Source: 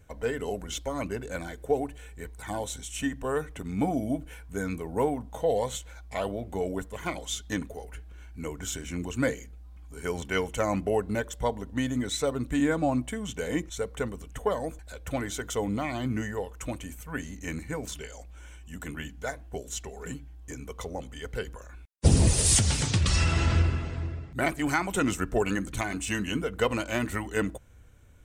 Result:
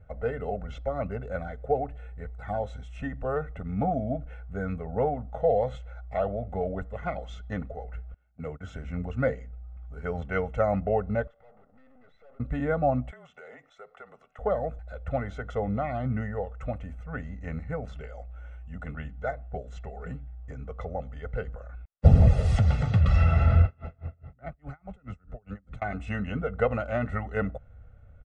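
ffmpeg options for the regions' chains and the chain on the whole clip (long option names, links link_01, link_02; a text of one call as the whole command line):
ffmpeg -i in.wav -filter_complex "[0:a]asettb=1/sr,asplit=3[link_01][link_02][link_03];[link_01]atrim=end=8.144[link_04];[link_02]atrim=start=8.14:end=8.76,asetpts=PTS-STARTPTS,afade=type=in:duration=0.004:curve=qsin,afade=type=out:start_time=0.616:duration=0.004:curve=qsin,agate=range=-20dB:threshold=-40dB:ratio=16:release=100:detection=peak,highpass=frequency=76:width=0.5412,highpass=frequency=76:width=1.3066,volume=27dB,asoftclip=hard,volume=-27dB[link_05];[link_03]atrim=start=8.756[link_06];[link_04][link_05]acrossfade=duration=0.004:curve1=hsin:curve2=qsin[link_07];[link_07][link_06]acrossfade=duration=0.004:curve1=qsin:curve2=hsin,asettb=1/sr,asplit=3[link_08][link_09][link_10];[link_08]atrim=end=11.274[link_11];[link_09]atrim=start=11.27:end=12.4,asetpts=PTS-STARTPTS,afade=type=in:duration=0.004:curve=qsin,afade=type=out:start_time=1.126:duration=0.004:curve=qsin,acompressor=threshold=-40dB:ratio=4:attack=3.2:release=140:knee=1:detection=peak,highpass=380,lowpass=2600,aeval=exprs='(tanh(562*val(0)+0.7)-tanh(0.7))/562':channel_layout=same[link_12];[link_10]atrim=start=12.396[link_13];[link_11][link_12]acrossfade=duration=0.004:curve1=hsin:curve2=qsin[link_14];[link_14][link_13]acrossfade=duration=0.004:curve1=qsin:curve2=hsin,asettb=1/sr,asplit=3[link_15][link_16][link_17];[link_15]atrim=end=13.114[link_18];[link_16]atrim=start=13.11:end=14.39,asetpts=PTS-STARTPTS,afade=type=in:duration=0.004:curve=qsin,afade=type=out:start_time=1.276:duration=0.004:curve=qsin,highpass=720,acompressor=threshold=-42dB:ratio=4:attack=3.2:release=140:knee=1:detection=peak,afreqshift=-36[link_19];[link_17]atrim=start=14.386[link_20];[link_18][link_19]acrossfade=duration=0.004:curve1=hsin:curve2=qsin[link_21];[link_21][link_20]acrossfade=duration=0.004:curve1=qsin:curve2=hsin,asettb=1/sr,asplit=3[link_22][link_23][link_24];[link_22]atrim=end=23.654[link_25];[link_23]atrim=start=23.65:end=25.82,asetpts=PTS-STARTPTS,afade=type=in:duration=0.004:curve=qsin,afade=type=out:start_time=2.166:duration=0.004:curve=qsin,acrossover=split=100|200[link_26][link_27][link_28];[link_26]acompressor=threshold=-39dB:ratio=4[link_29];[link_27]acompressor=threshold=-42dB:ratio=4[link_30];[link_28]acompressor=threshold=-36dB:ratio=4[link_31];[link_29][link_30][link_31]amix=inputs=3:normalize=0,aeval=exprs='val(0)*pow(10,-32*(0.5-0.5*cos(2*PI*4.8*n/s))/20)':channel_layout=same[link_32];[link_24]atrim=start=25.816[link_33];[link_25][link_32]acrossfade=duration=0.004:curve1=hsin:curve2=qsin[link_34];[link_34][link_33]acrossfade=duration=0.004:curve1=qsin:curve2=hsin,lowpass=1400,bandreject=frequency=940:width=21,aecho=1:1:1.5:0.83" out.wav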